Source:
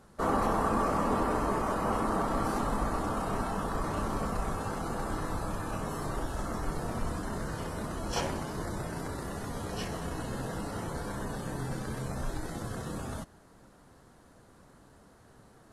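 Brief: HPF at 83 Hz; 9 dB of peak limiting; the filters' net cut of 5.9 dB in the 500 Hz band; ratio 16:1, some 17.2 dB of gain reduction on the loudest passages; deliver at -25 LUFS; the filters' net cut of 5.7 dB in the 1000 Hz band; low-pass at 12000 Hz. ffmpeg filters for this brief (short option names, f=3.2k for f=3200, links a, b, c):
-af "highpass=83,lowpass=12k,equalizer=f=500:t=o:g=-6,equalizer=f=1k:t=o:g=-5.5,acompressor=threshold=-46dB:ratio=16,volume=27.5dB,alimiter=limit=-15dB:level=0:latency=1"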